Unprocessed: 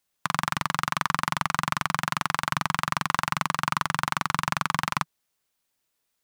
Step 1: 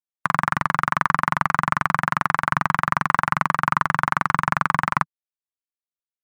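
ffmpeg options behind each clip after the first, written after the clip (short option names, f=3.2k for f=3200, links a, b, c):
-af "afftfilt=real='re*gte(hypot(re,im),0.00224)':imag='im*gte(hypot(re,im),0.00224)':win_size=1024:overlap=0.75,highshelf=f=2.4k:t=q:w=1.5:g=-10,volume=5dB"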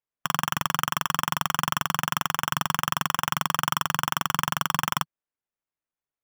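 -af "alimiter=limit=-6dB:level=0:latency=1:release=24,acrusher=samples=10:mix=1:aa=0.000001,volume=-3dB"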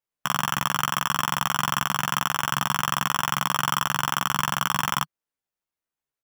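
-filter_complex "[0:a]asplit=2[a][b];[b]adelay=15,volume=-3.5dB[c];[a][c]amix=inputs=2:normalize=0"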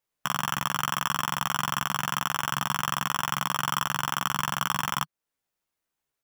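-af "alimiter=limit=-18.5dB:level=0:latency=1:release=391,volume=5.5dB"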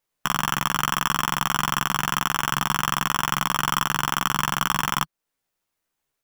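-af "aeval=exprs='if(lt(val(0),0),0.708*val(0),val(0))':c=same,volume=5.5dB"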